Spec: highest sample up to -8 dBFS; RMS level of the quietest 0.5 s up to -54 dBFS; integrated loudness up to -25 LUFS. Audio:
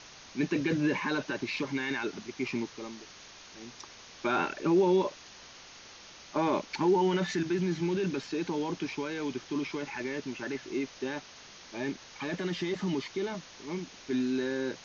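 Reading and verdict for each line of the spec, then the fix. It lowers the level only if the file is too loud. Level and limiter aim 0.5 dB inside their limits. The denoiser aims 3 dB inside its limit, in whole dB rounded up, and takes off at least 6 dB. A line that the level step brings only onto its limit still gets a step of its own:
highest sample -16.5 dBFS: pass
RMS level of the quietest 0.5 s -51 dBFS: fail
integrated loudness -32.0 LUFS: pass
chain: noise reduction 6 dB, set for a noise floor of -51 dBFS

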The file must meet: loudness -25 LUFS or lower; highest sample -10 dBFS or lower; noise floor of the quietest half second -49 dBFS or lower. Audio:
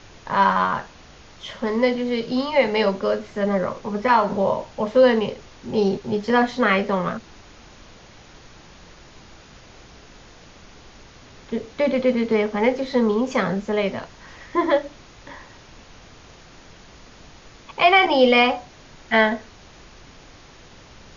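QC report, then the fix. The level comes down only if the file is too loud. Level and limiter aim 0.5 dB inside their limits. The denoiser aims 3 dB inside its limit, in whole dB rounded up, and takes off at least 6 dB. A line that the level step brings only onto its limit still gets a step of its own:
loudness -20.5 LUFS: fail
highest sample -3.0 dBFS: fail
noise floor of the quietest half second -46 dBFS: fail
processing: trim -5 dB; peak limiter -10.5 dBFS

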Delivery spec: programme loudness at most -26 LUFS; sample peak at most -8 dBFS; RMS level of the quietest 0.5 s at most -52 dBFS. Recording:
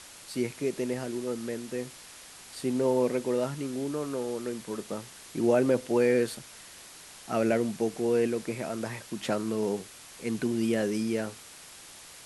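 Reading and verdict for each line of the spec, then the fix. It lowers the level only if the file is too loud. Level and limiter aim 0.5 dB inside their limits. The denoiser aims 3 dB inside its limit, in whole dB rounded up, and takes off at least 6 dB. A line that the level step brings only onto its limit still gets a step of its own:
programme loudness -30.0 LUFS: pass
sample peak -12.5 dBFS: pass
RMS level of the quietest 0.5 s -49 dBFS: fail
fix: noise reduction 6 dB, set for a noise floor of -49 dBFS

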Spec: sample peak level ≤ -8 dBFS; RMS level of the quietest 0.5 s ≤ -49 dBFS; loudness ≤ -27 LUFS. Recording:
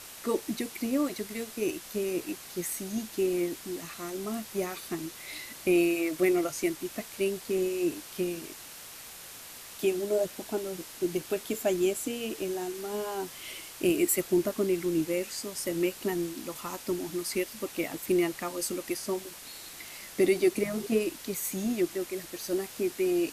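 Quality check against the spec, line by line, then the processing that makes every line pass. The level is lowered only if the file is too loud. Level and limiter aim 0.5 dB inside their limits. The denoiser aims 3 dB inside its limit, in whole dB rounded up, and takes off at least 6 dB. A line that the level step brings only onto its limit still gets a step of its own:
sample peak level -13.0 dBFS: pass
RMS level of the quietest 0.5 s -46 dBFS: fail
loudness -31.0 LUFS: pass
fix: noise reduction 6 dB, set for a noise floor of -46 dBFS

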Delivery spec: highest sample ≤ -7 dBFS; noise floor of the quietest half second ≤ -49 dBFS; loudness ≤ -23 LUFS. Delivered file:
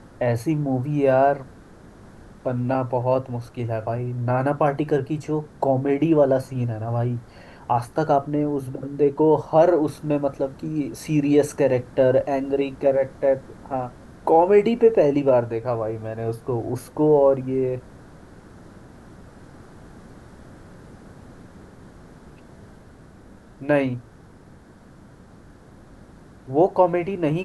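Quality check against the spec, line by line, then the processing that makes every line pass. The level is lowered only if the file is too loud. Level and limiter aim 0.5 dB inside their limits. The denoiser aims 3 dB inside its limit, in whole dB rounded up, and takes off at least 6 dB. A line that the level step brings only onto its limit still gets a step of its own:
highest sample -5.0 dBFS: fail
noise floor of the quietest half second -48 dBFS: fail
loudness -22.0 LUFS: fail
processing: trim -1.5 dB; peak limiter -7.5 dBFS

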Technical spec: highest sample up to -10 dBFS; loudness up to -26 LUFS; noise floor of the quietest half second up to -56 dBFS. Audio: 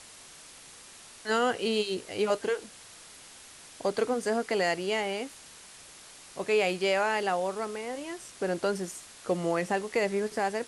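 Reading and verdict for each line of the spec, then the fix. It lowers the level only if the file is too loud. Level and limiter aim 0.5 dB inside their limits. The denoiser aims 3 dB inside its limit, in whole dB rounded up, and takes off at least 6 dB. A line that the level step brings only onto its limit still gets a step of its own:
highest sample -15.0 dBFS: pass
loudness -30.0 LUFS: pass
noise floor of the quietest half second -50 dBFS: fail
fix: noise reduction 9 dB, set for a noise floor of -50 dBFS

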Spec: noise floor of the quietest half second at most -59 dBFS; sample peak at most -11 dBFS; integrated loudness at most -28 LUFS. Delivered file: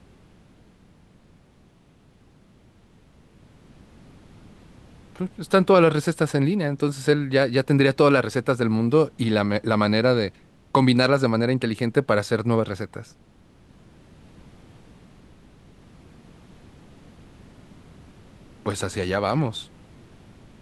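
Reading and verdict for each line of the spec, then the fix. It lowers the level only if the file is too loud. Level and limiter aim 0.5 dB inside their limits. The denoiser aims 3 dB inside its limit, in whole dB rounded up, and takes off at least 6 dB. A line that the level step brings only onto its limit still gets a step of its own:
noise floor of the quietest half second -56 dBFS: fail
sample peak -5.5 dBFS: fail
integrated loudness -21.5 LUFS: fail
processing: trim -7 dB

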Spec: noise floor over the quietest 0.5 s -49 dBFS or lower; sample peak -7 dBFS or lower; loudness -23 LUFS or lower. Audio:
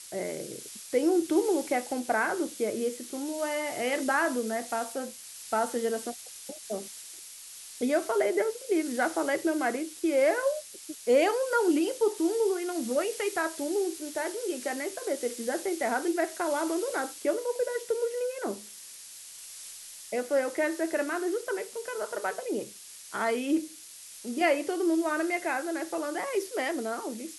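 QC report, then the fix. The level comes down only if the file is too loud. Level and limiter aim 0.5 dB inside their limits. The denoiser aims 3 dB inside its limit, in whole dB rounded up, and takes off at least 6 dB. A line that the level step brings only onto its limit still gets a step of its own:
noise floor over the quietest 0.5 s -47 dBFS: fail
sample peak -12.5 dBFS: pass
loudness -29.5 LUFS: pass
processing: noise reduction 6 dB, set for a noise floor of -47 dBFS

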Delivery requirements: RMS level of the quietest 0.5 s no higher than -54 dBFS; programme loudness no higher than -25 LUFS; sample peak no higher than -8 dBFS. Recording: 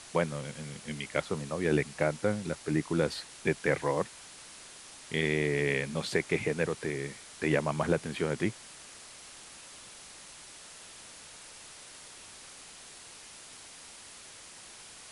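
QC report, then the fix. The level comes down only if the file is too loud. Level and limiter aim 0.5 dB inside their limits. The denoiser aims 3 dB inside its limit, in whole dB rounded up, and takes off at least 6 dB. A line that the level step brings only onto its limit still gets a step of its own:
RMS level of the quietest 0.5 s -50 dBFS: fail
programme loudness -31.5 LUFS: pass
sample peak -12.0 dBFS: pass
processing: noise reduction 7 dB, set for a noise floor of -50 dBFS

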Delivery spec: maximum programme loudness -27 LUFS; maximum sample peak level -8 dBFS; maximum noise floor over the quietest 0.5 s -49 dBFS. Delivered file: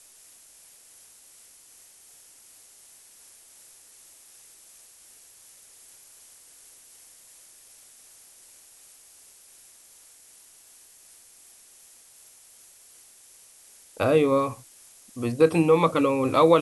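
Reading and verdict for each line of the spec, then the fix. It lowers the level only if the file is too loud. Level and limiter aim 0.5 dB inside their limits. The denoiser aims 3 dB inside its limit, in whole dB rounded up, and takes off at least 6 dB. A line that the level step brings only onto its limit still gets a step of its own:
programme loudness -22.0 LUFS: fail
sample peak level -6.5 dBFS: fail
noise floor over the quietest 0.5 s -53 dBFS: pass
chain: trim -5.5 dB

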